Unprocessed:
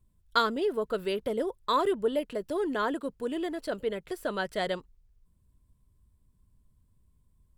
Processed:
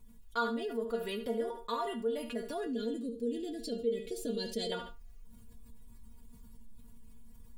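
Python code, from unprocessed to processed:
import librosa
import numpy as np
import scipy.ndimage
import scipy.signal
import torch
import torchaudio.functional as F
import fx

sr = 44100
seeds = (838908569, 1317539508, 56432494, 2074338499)

y = fx.curve_eq(x, sr, hz=(180.0, 270.0, 500.0, 850.0, 1300.0, 3800.0, 7500.0, 12000.0), db=(0, 6, 1, -27, -25, 0, 0, -6), at=(2.66, 4.72))
y = fx.rider(y, sr, range_db=10, speed_s=0.5)
y = fx.stiff_resonator(y, sr, f0_hz=230.0, decay_s=0.21, stiffness=0.002)
y = fx.echo_feedback(y, sr, ms=72, feedback_pct=22, wet_db=-15)
y = fx.env_flatten(y, sr, amount_pct=50)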